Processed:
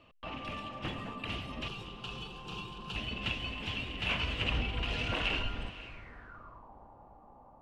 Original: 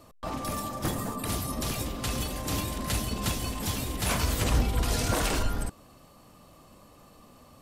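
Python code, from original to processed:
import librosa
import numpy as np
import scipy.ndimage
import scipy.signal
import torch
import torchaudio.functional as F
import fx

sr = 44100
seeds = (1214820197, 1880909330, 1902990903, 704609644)

y = fx.fixed_phaser(x, sr, hz=400.0, stages=8, at=(1.68, 2.96))
y = fx.echo_diffused(y, sr, ms=533, feedback_pct=51, wet_db=-15)
y = fx.filter_sweep_lowpass(y, sr, from_hz=2800.0, to_hz=850.0, start_s=5.83, end_s=6.72, q=7.1)
y = y * 10.0 ** (-9.0 / 20.0)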